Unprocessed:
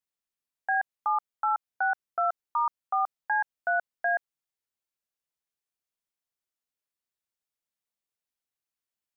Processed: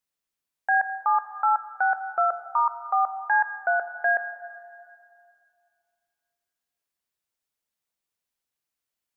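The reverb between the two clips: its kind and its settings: plate-style reverb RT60 2.4 s, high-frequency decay 0.8×, DRR 10.5 dB; gain +4 dB

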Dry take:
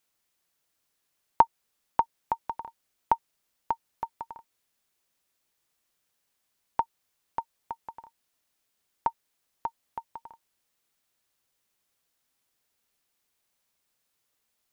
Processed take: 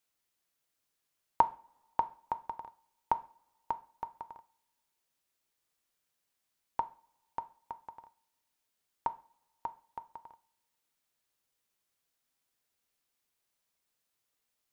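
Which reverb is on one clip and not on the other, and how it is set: two-slope reverb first 0.4 s, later 1.8 s, from -26 dB, DRR 11.5 dB; gain -5.5 dB

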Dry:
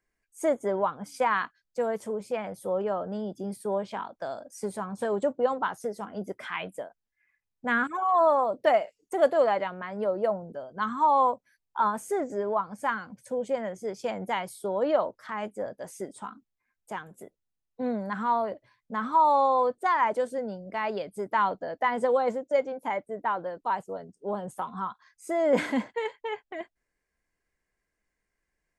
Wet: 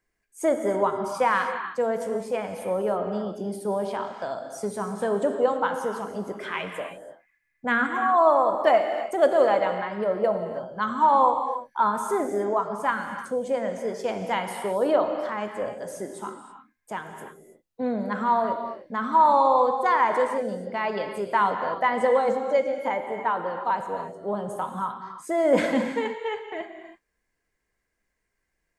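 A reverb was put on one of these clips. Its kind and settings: non-linear reverb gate 0.35 s flat, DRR 5 dB; gain +2.5 dB

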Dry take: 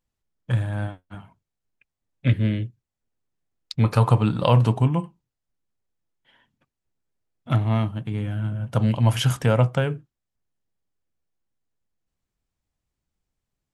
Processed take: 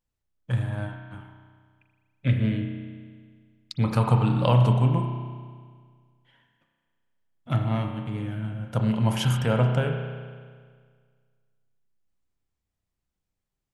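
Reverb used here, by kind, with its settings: spring tank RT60 1.8 s, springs 32 ms, chirp 30 ms, DRR 3.5 dB; gain -4 dB

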